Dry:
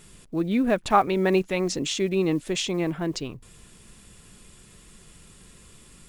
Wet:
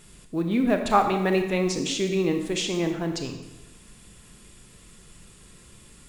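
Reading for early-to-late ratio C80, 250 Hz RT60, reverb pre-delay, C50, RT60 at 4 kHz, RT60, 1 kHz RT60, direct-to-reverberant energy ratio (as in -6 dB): 9.0 dB, 1.0 s, 24 ms, 6.5 dB, 0.85 s, 0.95 s, 1.0 s, 5.0 dB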